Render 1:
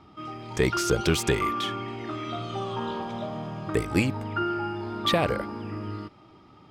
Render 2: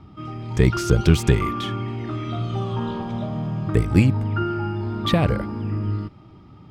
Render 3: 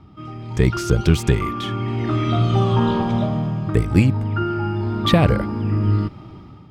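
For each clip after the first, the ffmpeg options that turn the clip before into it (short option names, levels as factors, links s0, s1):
-af "bass=f=250:g=13,treble=f=4000:g=-2"
-af "dynaudnorm=f=200:g=5:m=3.16,volume=0.891"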